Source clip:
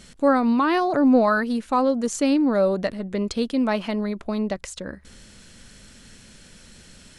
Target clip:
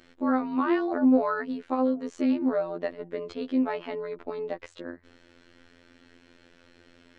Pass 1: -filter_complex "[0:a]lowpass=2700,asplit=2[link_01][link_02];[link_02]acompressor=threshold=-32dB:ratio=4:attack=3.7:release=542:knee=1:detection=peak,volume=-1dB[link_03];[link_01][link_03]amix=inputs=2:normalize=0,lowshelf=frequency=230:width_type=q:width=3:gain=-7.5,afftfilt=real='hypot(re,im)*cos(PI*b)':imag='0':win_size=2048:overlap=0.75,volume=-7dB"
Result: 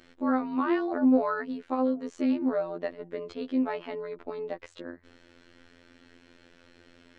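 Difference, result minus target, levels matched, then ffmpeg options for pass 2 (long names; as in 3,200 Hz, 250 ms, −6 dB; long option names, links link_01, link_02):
downward compressor: peak gain reduction +7 dB
-filter_complex "[0:a]lowpass=2700,asplit=2[link_01][link_02];[link_02]acompressor=threshold=-22.5dB:ratio=4:attack=3.7:release=542:knee=1:detection=peak,volume=-1dB[link_03];[link_01][link_03]amix=inputs=2:normalize=0,lowshelf=frequency=230:width_type=q:width=3:gain=-7.5,afftfilt=real='hypot(re,im)*cos(PI*b)':imag='0':win_size=2048:overlap=0.75,volume=-7dB"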